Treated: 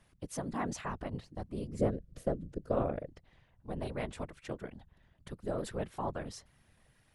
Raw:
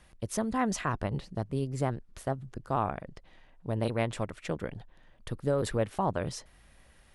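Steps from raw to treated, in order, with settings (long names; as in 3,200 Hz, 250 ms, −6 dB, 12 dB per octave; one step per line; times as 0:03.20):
random phases in short frames
0:01.79–0:03.08: low shelf with overshoot 690 Hz +7 dB, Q 3
level −7.5 dB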